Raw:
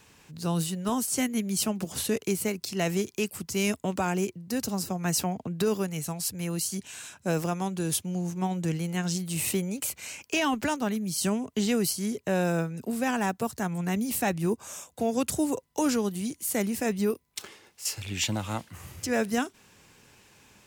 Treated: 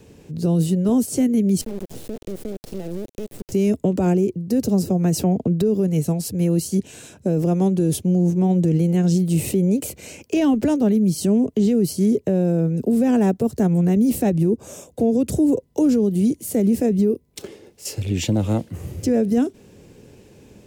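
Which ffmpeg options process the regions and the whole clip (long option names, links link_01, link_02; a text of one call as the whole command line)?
ffmpeg -i in.wav -filter_complex "[0:a]asettb=1/sr,asplit=3[link_01][link_02][link_03];[link_01]atrim=end=1.614[link_04];[link_02]atrim=start=1.61:end=3.52,asetpts=PTS-STARTPTS,afade=type=in:duration=0.004:curve=qsin,afade=type=out:start_time=1.906:duration=0.004:curve=qsin,bandreject=frequency=50:width_type=h:width=6,bandreject=frequency=100:width_type=h:width=6,bandreject=frequency=150:width_type=h:width=6,acompressor=threshold=-37dB:ratio=10:attack=3.2:release=140:knee=1:detection=peak,acrusher=bits=4:dc=4:mix=0:aa=0.000001[link_05];[link_03]atrim=start=3.516[link_06];[link_04][link_05]acrossfade=duration=0.004:curve1=hsin:curve2=qsin[link_07];[link_07][link_06]acrossfade=duration=0.004:curve1=qsin:curve2=hsin,lowshelf=frequency=710:width_type=q:width=1.5:gain=13.5,acrossover=split=330[link_08][link_09];[link_09]acompressor=threshold=-18dB:ratio=6[link_10];[link_08][link_10]amix=inputs=2:normalize=0,alimiter=limit=-11dB:level=0:latency=1:release=46" out.wav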